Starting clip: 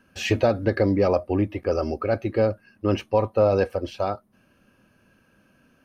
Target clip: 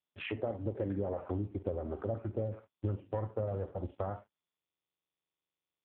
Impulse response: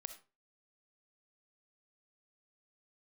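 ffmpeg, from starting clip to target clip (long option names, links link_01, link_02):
-filter_complex "[0:a]asettb=1/sr,asplit=3[link_01][link_02][link_03];[link_01]atrim=end=0.594[link_04];[link_02]atrim=start=0.59:end=2.89,asetpts=PTS-STARTPTS,afade=type=in:duration=0.004:curve=qsin,afade=type=out:start_time=2.296:duration=0.004:curve=qsin,acrossover=split=1200[link_05][link_06];[link_06]adelay=130[link_07];[link_05][link_07]amix=inputs=2:normalize=0,atrim=end_sample=101430[link_08];[link_03]atrim=start=2.886[link_09];[link_04][link_08]acrossfade=duration=0.004:curve1=hsin:curve2=qsin[link_10];[link_10][link_09]acrossfade=duration=0.004:curve1=qsin:curve2=hsin,afwtdn=0.0282,acontrast=70[link_11];[1:a]atrim=start_sample=2205,asetrate=61740,aresample=44100[link_12];[link_11][link_12]afir=irnorm=-1:irlink=0,asubboost=boost=7.5:cutoff=100,aeval=exprs='sgn(val(0))*max(abs(val(0))-0.00178,0)':channel_layout=same,acompressor=threshold=-30dB:ratio=12,highshelf=frequency=2300:gain=-5" -ar 8000 -c:a libopencore_amrnb -b:a 5150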